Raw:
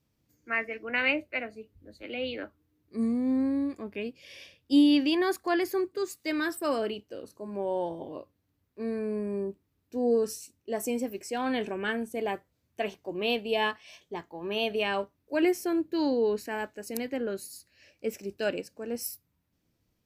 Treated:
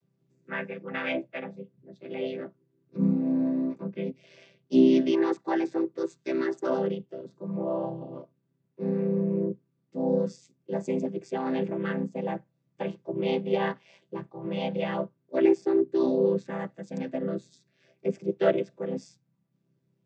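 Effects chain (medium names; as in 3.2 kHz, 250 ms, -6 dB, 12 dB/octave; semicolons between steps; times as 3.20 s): vocoder on a held chord major triad, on C3; time-frequency box 18.28–18.91 s, 280–4100 Hz +6 dB; trim +2.5 dB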